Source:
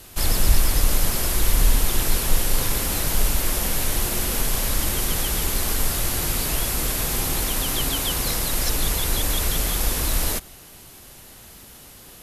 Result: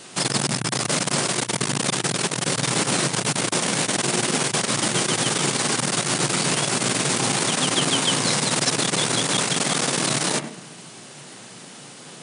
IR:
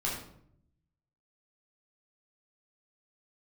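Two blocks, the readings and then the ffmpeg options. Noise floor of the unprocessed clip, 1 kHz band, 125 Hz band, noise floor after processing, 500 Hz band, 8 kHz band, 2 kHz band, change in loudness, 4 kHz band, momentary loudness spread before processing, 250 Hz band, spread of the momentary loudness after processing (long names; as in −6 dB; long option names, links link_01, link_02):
−45 dBFS, +6.0 dB, −0.5 dB, −42 dBFS, +5.5 dB, +3.0 dB, +5.5 dB, +1.5 dB, +5.0 dB, 2 LU, +6.0 dB, 20 LU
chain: -filter_complex "[0:a]asplit=2[link_01][link_02];[1:a]atrim=start_sample=2205,lowpass=2800,adelay=11[link_03];[link_02][link_03]afir=irnorm=-1:irlink=0,volume=-11.5dB[link_04];[link_01][link_04]amix=inputs=2:normalize=0,aeval=exprs='(tanh(7.08*val(0)+0.6)-tanh(0.6))/7.08':channel_layout=same,afftfilt=real='re*between(b*sr/4096,110,10000)':imag='im*between(b*sr/4096,110,10000)':win_size=4096:overlap=0.75,volume=8.5dB"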